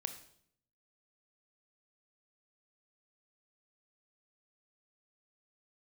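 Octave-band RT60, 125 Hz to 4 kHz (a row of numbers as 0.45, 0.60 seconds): 0.95, 0.85, 0.70, 0.60, 0.55, 0.60 seconds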